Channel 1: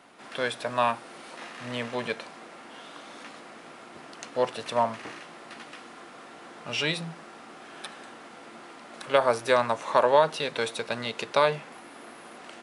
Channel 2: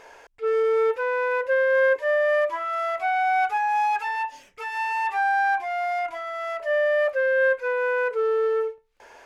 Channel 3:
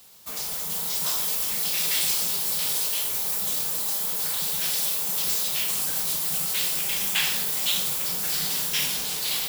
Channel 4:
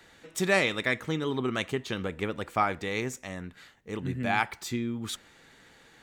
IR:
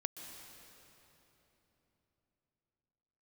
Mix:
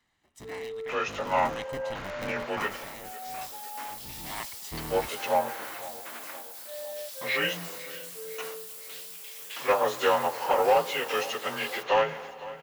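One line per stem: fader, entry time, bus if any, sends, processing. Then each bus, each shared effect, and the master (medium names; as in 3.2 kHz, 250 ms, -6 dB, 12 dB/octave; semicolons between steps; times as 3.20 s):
-5.0 dB, 0.55 s, send -9.5 dB, echo send -16 dB, frequency axis rescaled in octaves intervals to 89%; gate with hold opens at -35 dBFS; overdrive pedal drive 12 dB, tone 6.5 kHz, clips at -9 dBFS
-16.5 dB, 0.00 s, no send, echo send -16.5 dB, spectral contrast expander 2.5:1
-17.0 dB, 2.35 s, no send, echo send -23 dB, high-pass 970 Hz
0.85 s -19.5 dB -> 1.49 s -9.5 dB -> 2.54 s -9.5 dB -> 3.09 s -19.5 dB -> 4.01 s -19.5 dB -> 4.65 s -8 dB, 0.00 s, no send, no echo send, cycle switcher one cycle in 3, inverted; comb 1 ms, depth 48%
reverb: on, RT60 3.6 s, pre-delay 116 ms
echo: feedback delay 506 ms, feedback 58%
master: none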